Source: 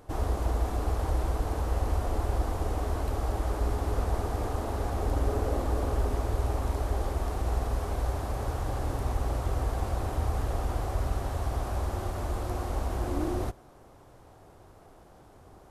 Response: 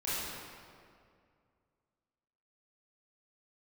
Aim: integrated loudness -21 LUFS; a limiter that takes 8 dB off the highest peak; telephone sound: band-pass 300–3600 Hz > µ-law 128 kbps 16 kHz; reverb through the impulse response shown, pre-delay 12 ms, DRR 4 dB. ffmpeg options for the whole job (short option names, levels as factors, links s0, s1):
-filter_complex "[0:a]alimiter=limit=0.0668:level=0:latency=1,asplit=2[s0][s1];[1:a]atrim=start_sample=2205,adelay=12[s2];[s1][s2]afir=irnorm=-1:irlink=0,volume=0.299[s3];[s0][s3]amix=inputs=2:normalize=0,highpass=300,lowpass=3600,volume=7.08" -ar 16000 -c:a pcm_mulaw